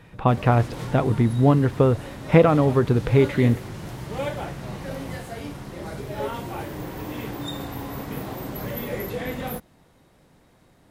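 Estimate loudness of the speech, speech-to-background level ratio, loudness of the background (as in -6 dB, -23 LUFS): -20.5 LUFS, 12.5 dB, -33.0 LUFS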